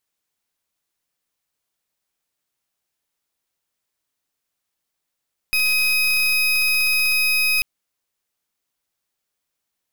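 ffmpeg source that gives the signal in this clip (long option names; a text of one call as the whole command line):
ffmpeg -f lavfi -i "aevalsrc='0.119*(2*lt(mod(2520*t,1),0.33)-1)':duration=2.09:sample_rate=44100" out.wav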